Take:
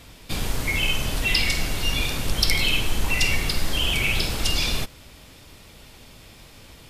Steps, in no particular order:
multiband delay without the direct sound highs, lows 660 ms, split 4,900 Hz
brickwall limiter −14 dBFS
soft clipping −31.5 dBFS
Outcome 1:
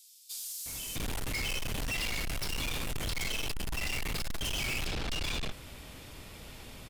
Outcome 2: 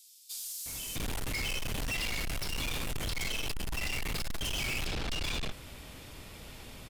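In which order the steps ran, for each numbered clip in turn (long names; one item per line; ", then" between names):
multiband delay without the direct sound, then soft clipping, then brickwall limiter
multiband delay without the direct sound, then brickwall limiter, then soft clipping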